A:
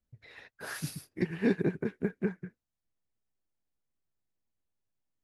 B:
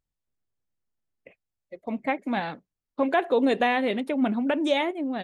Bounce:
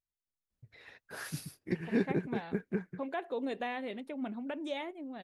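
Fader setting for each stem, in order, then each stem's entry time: -3.0 dB, -14.0 dB; 0.50 s, 0.00 s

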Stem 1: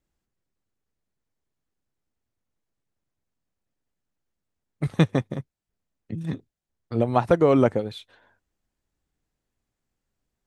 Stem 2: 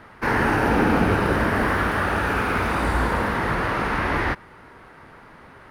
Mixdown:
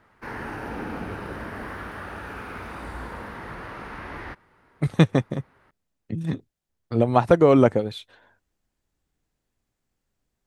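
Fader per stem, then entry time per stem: +2.5 dB, -14.0 dB; 0.00 s, 0.00 s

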